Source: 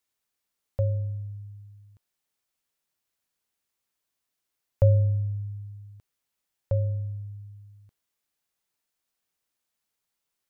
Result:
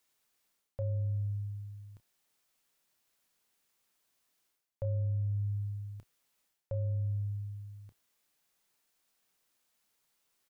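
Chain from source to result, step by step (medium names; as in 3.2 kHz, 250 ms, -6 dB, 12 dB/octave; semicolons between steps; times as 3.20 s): peaking EQ 77 Hz -8 dB 0.78 oct; reverse; compression 8:1, threshold -38 dBFS, peak gain reduction 20.5 dB; reverse; doubling 30 ms -13 dB; trim +5.5 dB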